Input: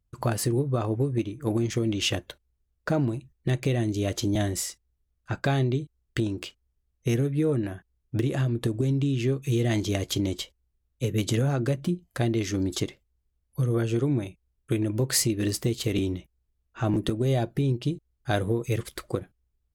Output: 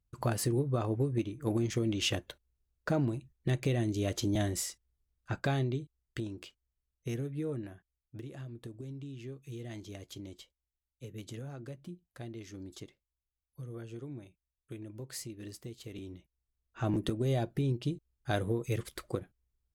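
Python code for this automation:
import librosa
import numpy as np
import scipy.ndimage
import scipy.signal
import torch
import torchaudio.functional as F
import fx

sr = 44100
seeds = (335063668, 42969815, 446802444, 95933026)

y = fx.gain(x, sr, db=fx.line((5.31, -5.0), (6.29, -11.5), (7.53, -11.5), (8.16, -18.5), (15.98, -18.5), (16.84, -6.0)))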